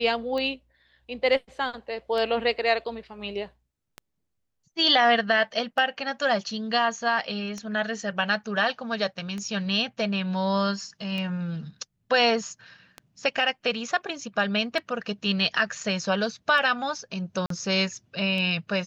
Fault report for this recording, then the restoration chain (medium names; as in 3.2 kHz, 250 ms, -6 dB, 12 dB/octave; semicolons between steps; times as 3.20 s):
tick 33 1/3 rpm -20 dBFS
17.46–17.50 s: dropout 43 ms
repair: de-click; interpolate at 17.46 s, 43 ms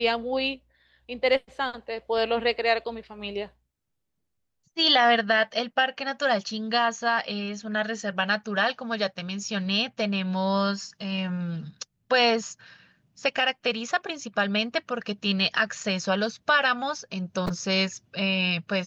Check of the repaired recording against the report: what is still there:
nothing left